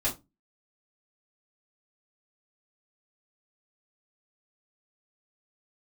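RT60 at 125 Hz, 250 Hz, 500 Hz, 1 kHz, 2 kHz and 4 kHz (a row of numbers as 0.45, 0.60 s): 0.35, 0.35, 0.25, 0.20, 0.20, 0.15 s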